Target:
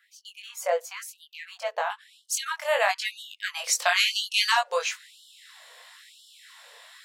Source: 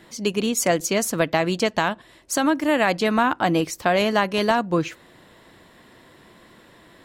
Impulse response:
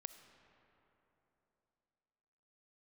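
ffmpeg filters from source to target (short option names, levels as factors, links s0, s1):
-af "asetnsamples=n=441:p=0,asendcmd='1.9 equalizer g 2.5;3.64 equalizer g 12',equalizer=f=6500:w=0.31:g=-12,flanger=delay=19.5:depth=2.7:speed=0.63,afftfilt=real='re*gte(b*sr/1024,420*pow(2900/420,0.5+0.5*sin(2*PI*1*pts/sr)))':imag='im*gte(b*sr/1024,420*pow(2900/420,0.5+0.5*sin(2*PI*1*pts/sr)))':win_size=1024:overlap=0.75"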